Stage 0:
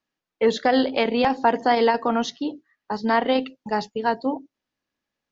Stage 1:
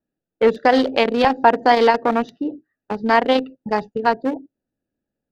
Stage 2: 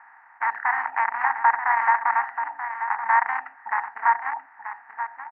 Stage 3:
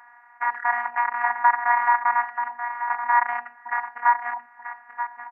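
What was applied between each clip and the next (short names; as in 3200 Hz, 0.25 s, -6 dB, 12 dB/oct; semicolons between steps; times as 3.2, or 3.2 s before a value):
Wiener smoothing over 41 samples; dynamic EQ 190 Hz, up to -5 dB, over -33 dBFS, Q 0.77; gain +7 dB
per-bin compression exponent 0.4; elliptic band-pass 880–2000 Hz, stop band 40 dB; echo 0.933 s -9.5 dB; gain -4.5 dB
robotiser 240 Hz; gain +2 dB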